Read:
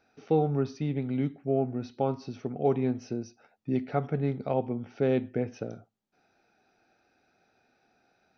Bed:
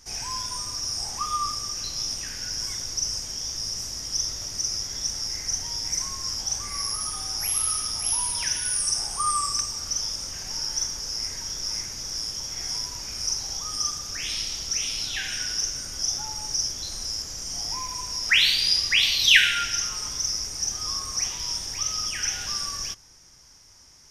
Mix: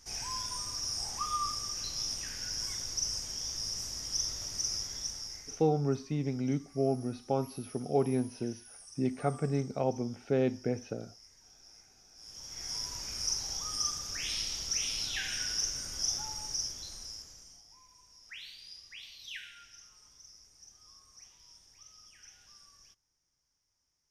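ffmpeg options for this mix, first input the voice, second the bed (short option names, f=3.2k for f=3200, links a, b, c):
-filter_complex "[0:a]adelay=5300,volume=-2.5dB[a];[1:a]volume=15.5dB,afade=t=out:st=4.74:d=0.96:silence=0.0891251,afade=t=in:st=12.16:d=0.78:silence=0.0841395,afade=t=out:st=16.1:d=1.53:silence=0.0749894[b];[a][b]amix=inputs=2:normalize=0"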